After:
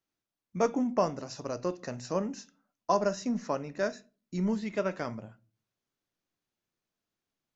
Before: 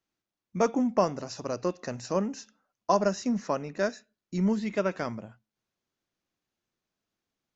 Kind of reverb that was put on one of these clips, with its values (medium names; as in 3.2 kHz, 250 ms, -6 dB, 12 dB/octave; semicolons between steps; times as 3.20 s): simulated room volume 170 m³, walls furnished, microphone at 0.33 m; trim -3 dB